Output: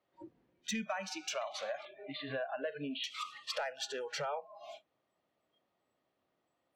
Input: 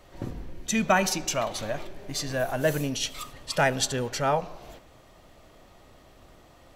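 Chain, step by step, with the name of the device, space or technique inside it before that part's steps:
AM radio (band-pass filter 180–4,200 Hz; downward compressor 8 to 1, threshold −36 dBFS, peak gain reduction 18.5 dB; soft clipping −29.5 dBFS, distortion −20 dB)
noise reduction from a noise print of the clip's start 28 dB
0:01.85–0:03.04: Butterworth low-pass 4,000 Hz 96 dB per octave
level +2.5 dB

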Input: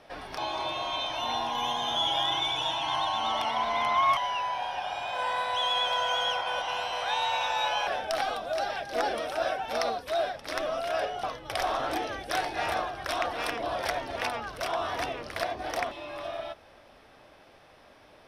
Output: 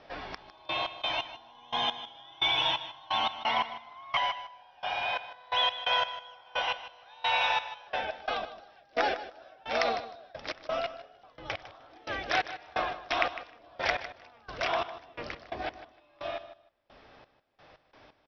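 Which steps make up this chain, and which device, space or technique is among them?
Butterworth low-pass 5,500 Hz 48 dB per octave
trance gate with a delay (gate pattern "xx..x.x...x..." 87 BPM −24 dB; repeating echo 154 ms, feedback 18%, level −13 dB)
dynamic equaliser 2,300 Hz, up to +7 dB, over −48 dBFS, Q 1.5

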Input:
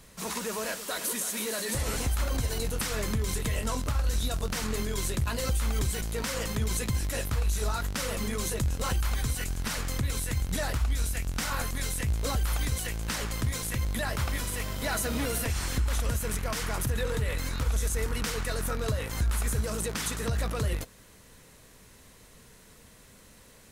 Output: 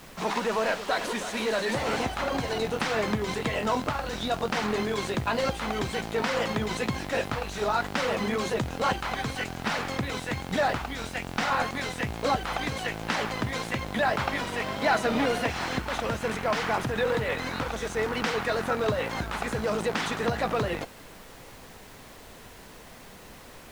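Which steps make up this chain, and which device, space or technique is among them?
horn gramophone (band-pass filter 190–3,400 Hz; parametric band 770 Hz +7 dB 0.49 octaves; tape wow and flutter; pink noise bed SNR 20 dB)
level +6.5 dB

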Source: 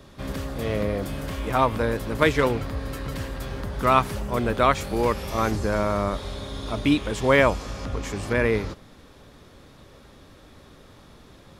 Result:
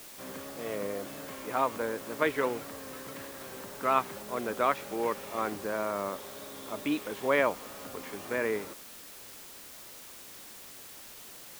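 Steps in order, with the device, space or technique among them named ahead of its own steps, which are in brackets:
wax cylinder (band-pass filter 280–2,800 Hz; tape wow and flutter; white noise bed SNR 14 dB)
level −7 dB

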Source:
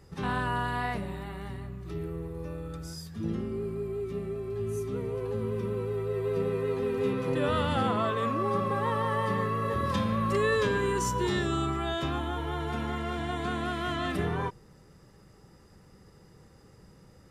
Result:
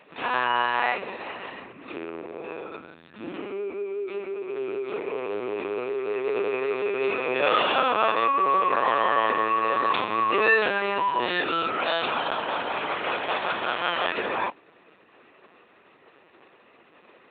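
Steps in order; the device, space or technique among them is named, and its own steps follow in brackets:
0:02.64–0:03.34: high-shelf EQ 3,600 Hz −7.5 dB
talking toy (linear-prediction vocoder at 8 kHz pitch kept; high-pass filter 510 Hz 12 dB per octave; parametric band 2,500 Hz +10.5 dB 0.26 octaves)
level +8.5 dB

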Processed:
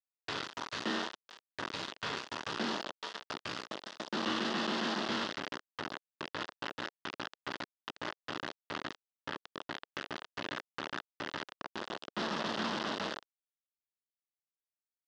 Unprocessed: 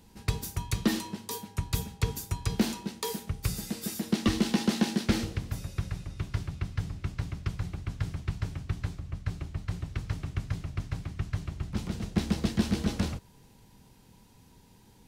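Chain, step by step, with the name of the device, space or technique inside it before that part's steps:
peak hold with a decay on every bin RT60 1.21 s
0:06.67–0:08.05: parametric band 180 Hz −2.5 dB 0.9 octaves
hand-held game console (bit reduction 4 bits; loudspeaker in its box 450–4,300 Hz, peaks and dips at 480 Hz −5 dB, 750 Hz −4 dB, 2,300 Hz −10 dB, 4,100 Hz −3 dB)
level −4.5 dB

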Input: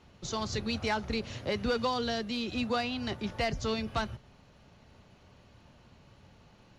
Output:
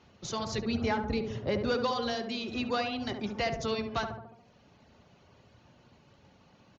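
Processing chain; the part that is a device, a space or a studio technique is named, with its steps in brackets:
reverb reduction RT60 0.71 s
0:00.58–0:01.65: spectral tilt −2 dB per octave
tape delay 70 ms, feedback 71%, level −3.5 dB, low-pass 1,000 Hz
Bluetooth headset (high-pass filter 100 Hz 6 dB per octave; downsampling to 16,000 Hz; SBC 64 kbit/s 16,000 Hz)

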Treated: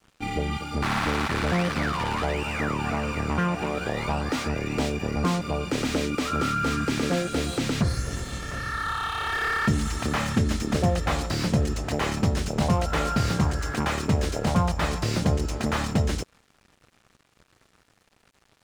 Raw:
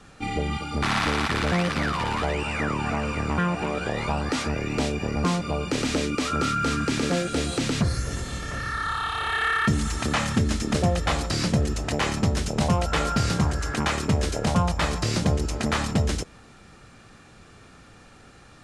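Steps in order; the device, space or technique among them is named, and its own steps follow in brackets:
early transistor amplifier (dead-zone distortion −46.5 dBFS; slew-rate limiting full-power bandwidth 110 Hz)

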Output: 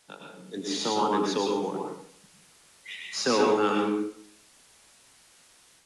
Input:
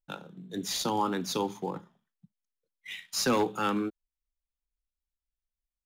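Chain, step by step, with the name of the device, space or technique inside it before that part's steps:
filmed off a television (band-pass filter 190–6,700 Hz; parametric band 440 Hz +6 dB 0.22 octaves; convolution reverb RT60 0.60 s, pre-delay 97 ms, DRR 0 dB; white noise bed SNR 25 dB; automatic gain control gain up to 5.5 dB; level −5 dB; AAC 64 kbit/s 24,000 Hz)

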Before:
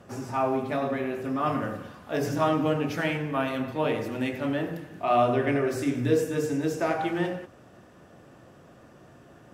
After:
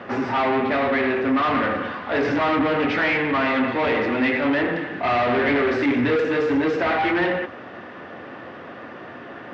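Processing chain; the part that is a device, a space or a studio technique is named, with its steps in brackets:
overdrive pedal into a guitar cabinet (mid-hump overdrive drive 29 dB, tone 2,200 Hz, clips at −10.5 dBFS; loudspeaker in its box 79–4,200 Hz, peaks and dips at 84 Hz +7 dB, 150 Hz −4 dB, 250 Hz +4 dB, 640 Hz −3 dB, 2,000 Hz +6 dB)
level −2.5 dB

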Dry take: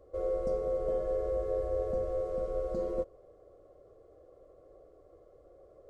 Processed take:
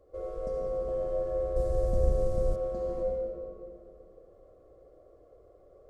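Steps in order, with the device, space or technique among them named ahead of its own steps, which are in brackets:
stairwell (convolution reverb RT60 2.3 s, pre-delay 63 ms, DRR −1.5 dB)
0:01.56–0:02.56: bass and treble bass +12 dB, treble +14 dB
level −3.5 dB

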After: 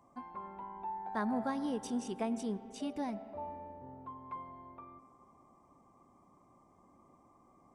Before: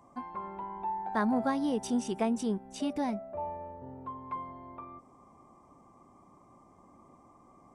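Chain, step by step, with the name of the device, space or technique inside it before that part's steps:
filtered reverb send (on a send: high-pass filter 200 Hz 24 dB per octave + low-pass filter 3,100 Hz 12 dB per octave + convolution reverb RT60 2.6 s, pre-delay 80 ms, DRR 14 dB)
on the sum: level −6 dB

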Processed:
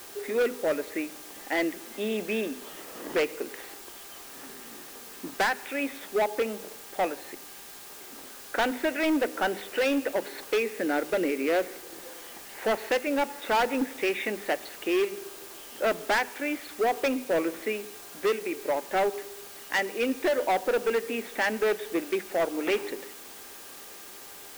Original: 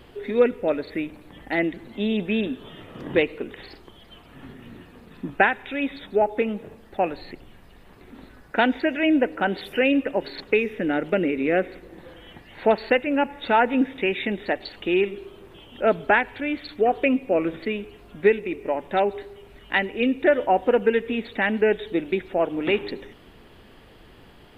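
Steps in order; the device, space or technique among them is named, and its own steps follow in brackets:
aircraft radio (band-pass filter 350–2,600 Hz; hard clipping −21 dBFS, distortion −8 dB; hum with harmonics 400 Hz, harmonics 4, −58 dBFS 0 dB per octave; white noise bed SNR 16 dB)
parametric band 110 Hz −8.5 dB 0.45 octaves
mains-hum notches 50/100/150/200/250 Hz

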